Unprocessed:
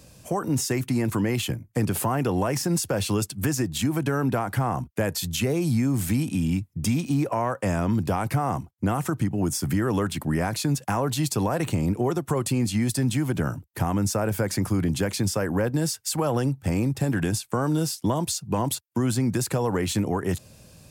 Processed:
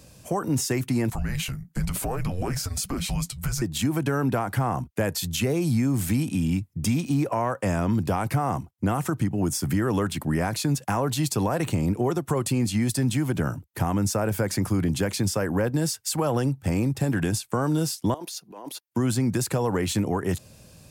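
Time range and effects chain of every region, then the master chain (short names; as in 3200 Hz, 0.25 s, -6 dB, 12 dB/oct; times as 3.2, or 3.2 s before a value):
1.1–3.62 transient shaper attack +1 dB, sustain +7 dB + frequency shift -270 Hz + flange 1.1 Hz, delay 2.4 ms, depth 7 ms, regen -51%
18.14–18.87 ladder high-pass 260 Hz, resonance 20% + bell 7800 Hz -10 dB 0.29 oct + negative-ratio compressor -38 dBFS
whole clip: dry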